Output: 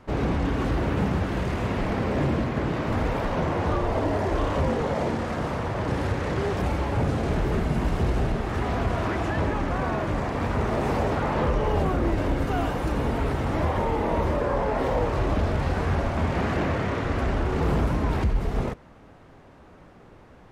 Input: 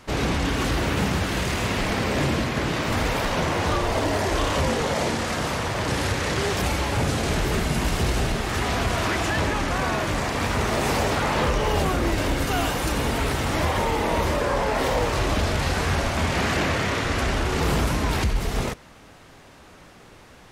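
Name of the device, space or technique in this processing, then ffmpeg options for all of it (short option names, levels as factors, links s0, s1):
through cloth: -af "highshelf=f=2300:g=-18"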